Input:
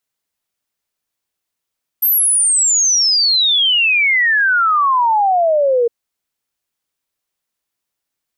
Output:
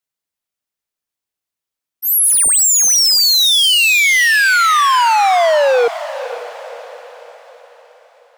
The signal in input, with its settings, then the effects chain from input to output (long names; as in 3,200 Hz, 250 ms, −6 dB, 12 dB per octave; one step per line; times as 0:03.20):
exponential sine sweep 13,000 Hz → 460 Hz 3.86 s −10.5 dBFS
volume swells 220 ms
leveller curve on the samples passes 3
feedback delay with all-pass diffusion 523 ms, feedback 46%, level −13 dB